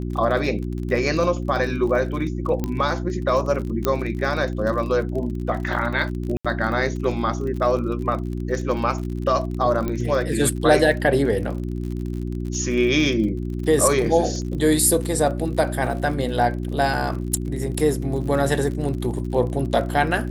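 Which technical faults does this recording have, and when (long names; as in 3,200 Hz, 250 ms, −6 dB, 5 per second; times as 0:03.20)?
surface crackle 44 per second −30 dBFS
mains hum 60 Hz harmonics 6 −27 dBFS
0:02.64: click −12 dBFS
0:03.85: click −7 dBFS
0:06.37–0:06.45: drop-out 76 ms
0:09.88: click −13 dBFS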